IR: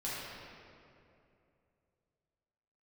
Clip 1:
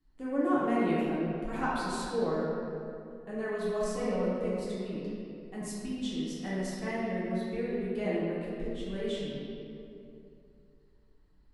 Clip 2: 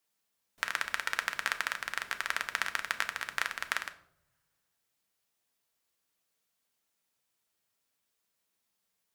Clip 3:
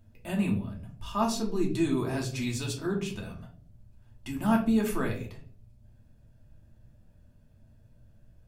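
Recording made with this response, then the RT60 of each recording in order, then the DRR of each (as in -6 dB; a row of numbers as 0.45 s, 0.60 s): 1; 2.7 s, no single decay rate, 0.55 s; -9.5 dB, 7.0 dB, -2.0 dB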